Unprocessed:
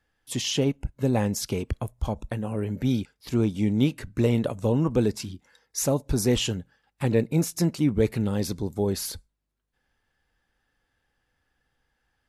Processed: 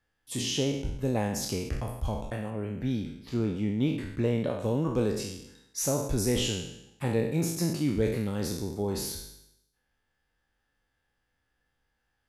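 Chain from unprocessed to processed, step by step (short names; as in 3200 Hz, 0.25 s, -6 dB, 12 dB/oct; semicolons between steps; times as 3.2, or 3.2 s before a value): spectral trails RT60 0.81 s; 2.5–4.6 high shelf 5300 Hz -11.5 dB; gain -6 dB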